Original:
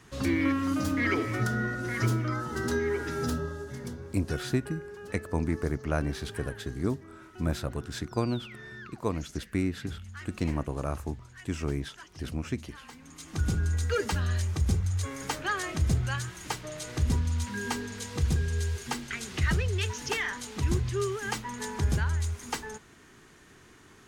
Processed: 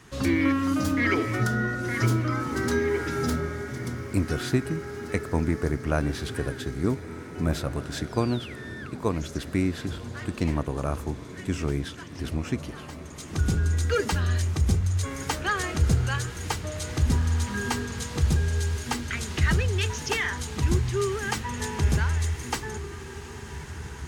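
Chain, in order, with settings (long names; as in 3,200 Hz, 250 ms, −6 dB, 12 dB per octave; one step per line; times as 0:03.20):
feedback delay with all-pass diffusion 1,976 ms, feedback 45%, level −12.5 dB
level +3.5 dB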